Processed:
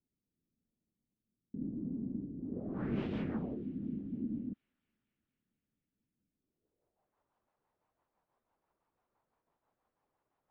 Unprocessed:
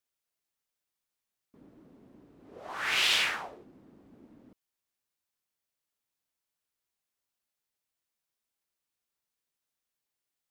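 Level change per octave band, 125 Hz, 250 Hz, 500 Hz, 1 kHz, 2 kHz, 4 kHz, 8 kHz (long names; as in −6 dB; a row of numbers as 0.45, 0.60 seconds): +17.0 dB, +17.5 dB, +2.5 dB, −14.5 dB, −24.0 dB, below −30 dB, below −35 dB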